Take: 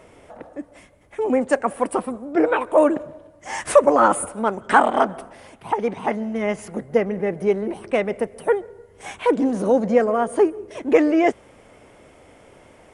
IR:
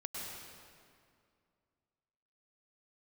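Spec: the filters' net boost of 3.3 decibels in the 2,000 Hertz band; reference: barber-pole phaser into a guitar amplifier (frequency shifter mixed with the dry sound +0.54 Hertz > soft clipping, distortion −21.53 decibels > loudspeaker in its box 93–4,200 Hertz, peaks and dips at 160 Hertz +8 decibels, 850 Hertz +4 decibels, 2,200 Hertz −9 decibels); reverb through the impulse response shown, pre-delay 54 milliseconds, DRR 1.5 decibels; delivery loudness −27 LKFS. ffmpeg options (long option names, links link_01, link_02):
-filter_complex "[0:a]equalizer=frequency=2000:width_type=o:gain=7.5,asplit=2[link_01][link_02];[1:a]atrim=start_sample=2205,adelay=54[link_03];[link_02][link_03]afir=irnorm=-1:irlink=0,volume=-2dB[link_04];[link_01][link_04]amix=inputs=2:normalize=0,asplit=2[link_05][link_06];[link_06]afreqshift=0.54[link_07];[link_05][link_07]amix=inputs=2:normalize=1,asoftclip=threshold=-5.5dB,highpass=93,equalizer=frequency=160:width_type=q:width=4:gain=8,equalizer=frequency=850:width_type=q:width=4:gain=4,equalizer=frequency=2200:width_type=q:width=4:gain=-9,lowpass=frequency=4200:width=0.5412,lowpass=frequency=4200:width=1.3066,volume=-6.5dB"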